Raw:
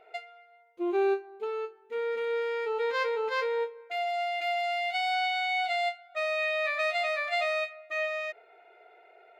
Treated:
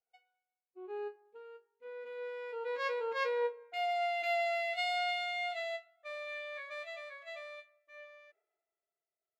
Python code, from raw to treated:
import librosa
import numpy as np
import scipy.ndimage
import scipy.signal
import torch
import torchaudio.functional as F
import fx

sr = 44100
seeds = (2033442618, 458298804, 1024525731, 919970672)

y = fx.doppler_pass(x, sr, speed_mps=19, closest_m=20.0, pass_at_s=4.01)
y = fx.band_widen(y, sr, depth_pct=70)
y = y * 10.0 ** (-3.5 / 20.0)